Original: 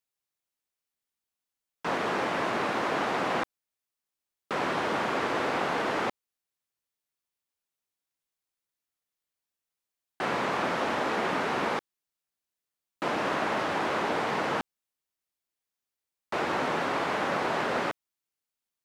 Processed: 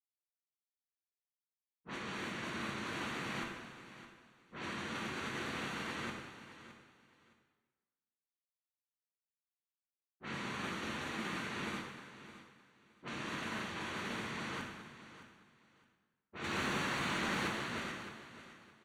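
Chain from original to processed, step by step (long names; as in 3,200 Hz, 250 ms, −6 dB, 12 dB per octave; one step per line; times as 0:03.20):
downward expander −20 dBFS
low-pass that shuts in the quiet parts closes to 440 Hz, open at −35 dBFS
guitar amp tone stack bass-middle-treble 6-0-2
0:16.44–0:17.48: leveller curve on the samples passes 2
Butterworth band-reject 5,100 Hz, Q 7
repeating echo 615 ms, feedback 22%, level −14 dB
dense smooth reverb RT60 1.3 s, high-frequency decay 0.8×, pre-delay 0 ms, DRR −0.5 dB
level +17.5 dB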